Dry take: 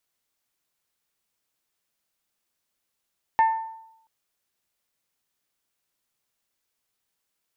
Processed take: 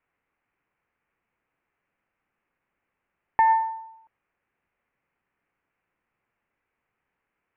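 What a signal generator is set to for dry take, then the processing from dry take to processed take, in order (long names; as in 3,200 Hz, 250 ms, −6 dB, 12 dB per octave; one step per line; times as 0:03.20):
struck glass bell, length 0.68 s, lowest mode 894 Hz, decay 0.81 s, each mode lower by 11.5 dB, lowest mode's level −13.5 dB
Butterworth low-pass 2,500 Hz 48 dB per octave
notch filter 630 Hz, Q 15
in parallel at −0.5 dB: compressor whose output falls as the input rises −25 dBFS, ratio −0.5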